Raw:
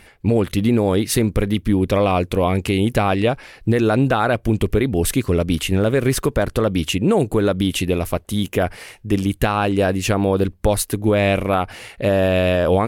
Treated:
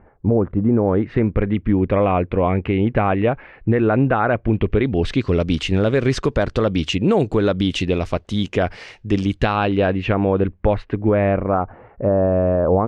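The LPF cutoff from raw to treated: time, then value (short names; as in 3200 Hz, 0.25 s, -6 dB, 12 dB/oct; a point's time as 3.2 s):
LPF 24 dB/oct
0.61 s 1200 Hz
1.27 s 2300 Hz
4.39 s 2300 Hz
5.42 s 5900 Hz
9.33 s 5900 Hz
10.21 s 2500 Hz
10.9 s 2500 Hz
11.71 s 1200 Hz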